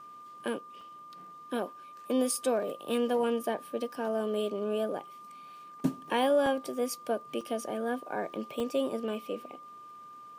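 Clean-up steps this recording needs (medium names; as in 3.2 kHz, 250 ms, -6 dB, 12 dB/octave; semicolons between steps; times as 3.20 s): de-click; band-stop 1.2 kHz, Q 30; interpolate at 0.81/6.46/7.41/8.60 s, 2.9 ms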